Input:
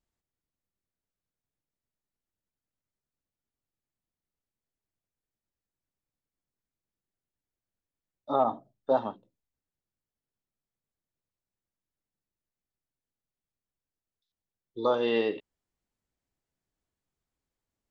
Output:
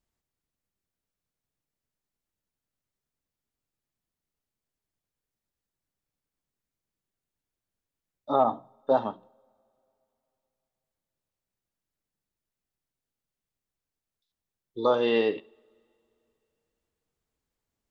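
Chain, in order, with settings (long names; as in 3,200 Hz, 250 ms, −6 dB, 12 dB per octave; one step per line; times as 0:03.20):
coupled-rooms reverb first 0.5 s, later 3.1 s, from −22 dB, DRR 19.5 dB
level +2.5 dB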